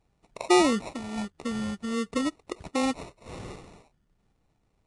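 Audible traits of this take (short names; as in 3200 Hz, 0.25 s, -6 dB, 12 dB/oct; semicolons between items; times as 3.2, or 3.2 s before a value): aliases and images of a low sample rate 1600 Hz, jitter 0%; Vorbis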